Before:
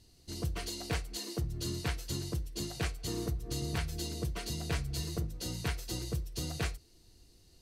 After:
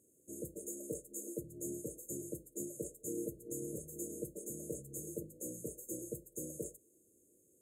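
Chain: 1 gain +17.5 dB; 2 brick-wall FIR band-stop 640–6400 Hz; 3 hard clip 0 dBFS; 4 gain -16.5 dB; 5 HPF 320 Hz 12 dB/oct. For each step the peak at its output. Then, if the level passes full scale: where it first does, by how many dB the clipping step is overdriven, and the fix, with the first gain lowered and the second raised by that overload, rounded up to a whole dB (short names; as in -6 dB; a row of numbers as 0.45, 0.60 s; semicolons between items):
-3.5, -6.0, -6.0, -22.5, -27.0 dBFS; no overload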